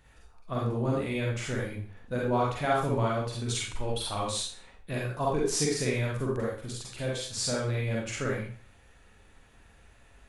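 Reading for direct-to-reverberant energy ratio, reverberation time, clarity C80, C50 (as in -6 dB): -4.0 dB, 0.45 s, 6.5 dB, 0.5 dB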